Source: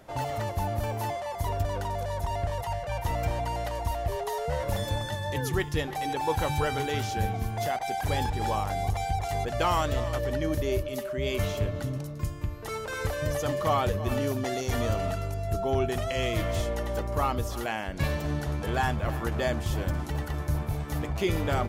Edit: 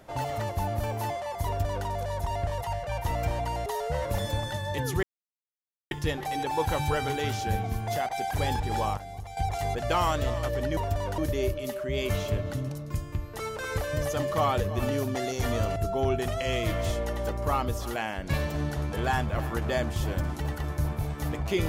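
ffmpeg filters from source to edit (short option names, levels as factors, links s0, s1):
-filter_complex "[0:a]asplit=8[s0][s1][s2][s3][s4][s5][s6][s7];[s0]atrim=end=3.662[s8];[s1]atrim=start=4.238:end=5.61,asetpts=PTS-STARTPTS,afade=t=out:st=1.368:d=0.004:c=hsin,apad=pad_dur=0.88[s9];[s2]atrim=start=5.61:end=8.672,asetpts=PTS-STARTPTS,afade=t=in:d=0.004:c=hsin[s10];[s3]atrim=start=8.668:end=9.072,asetpts=PTS-STARTPTS,volume=0.282[s11];[s4]atrim=start=9.068:end=10.472[s12];[s5]atrim=start=1.458:end=1.872[s13];[s6]atrim=start=10.468:end=15.052[s14];[s7]atrim=start=15.458[s15];[s9][s10]concat=n=2:v=0:a=1[s16];[s8][s16]acrossfade=d=0.004:c1=hsin:c2=hsin[s17];[s17][s11]acrossfade=d=0.004:c1=hsin:c2=hsin[s18];[s18][s12]acrossfade=d=0.004:c1=hsin:c2=hsin[s19];[s19][s13]acrossfade=d=0.004:c1=hsin:c2=hsin[s20];[s20][s14]acrossfade=d=0.004:c1=hsin:c2=hsin[s21];[s21][s15]acrossfade=d=0.004:c1=hsin:c2=hsin"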